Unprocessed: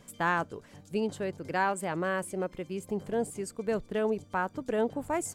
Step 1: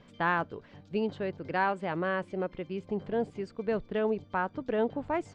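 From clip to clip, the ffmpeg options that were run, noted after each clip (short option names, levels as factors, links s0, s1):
-af "lowpass=f=4200:w=0.5412,lowpass=f=4200:w=1.3066"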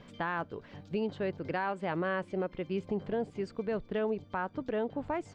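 -af "alimiter=level_in=1.33:limit=0.0631:level=0:latency=1:release=409,volume=0.75,volume=1.5"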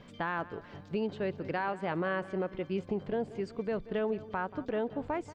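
-filter_complex "[0:a]asplit=2[s0][s1];[s1]adelay=183,lowpass=f=4100:p=1,volume=0.15,asplit=2[s2][s3];[s3]adelay=183,lowpass=f=4100:p=1,volume=0.5,asplit=2[s4][s5];[s5]adelay=183,lowpass=f=4100:p=1,volume=0.5,asplit=2[s6][s7];[s7]adelay=183,lowpass=f=4100:p=1,volume=0.5[s8];[s0][s2][s4][s6][s8]amix=inputs=5:normalize=0"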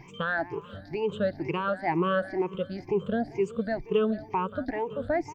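-af "afftfilt=real='re*pow(10,23/40*sin(2*PI*(0.74*log(max(b,1)*sr/1024/100)/log(2)-(2.1)*(pts-256)/sr)))':imag='im*pow(10,23/40*sin(2*PI*(0.74*log(max(b,1)*sr/1024/100)/log(2)-(2.1)*(pts-256)/sr)))':win_size=1024:overlap=0.75"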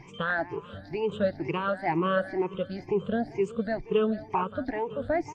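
-ar 44100 -c:a aac -b:a 32k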